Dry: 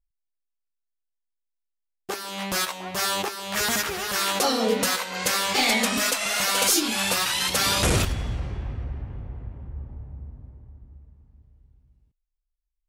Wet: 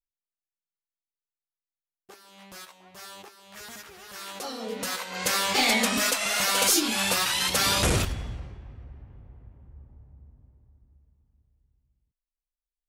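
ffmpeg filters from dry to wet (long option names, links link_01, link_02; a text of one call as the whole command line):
ffmpeg -i in.wav -af "volume=-1dB,afade=type=in:start_time=3.89:duration=0.83:silence=0.446684,afade=type=in:start_time=4.72:duration=0.66:silence=0.298538,afade=type=out:start_time=7.77:duration=0.82:silence=0.266073" out.wav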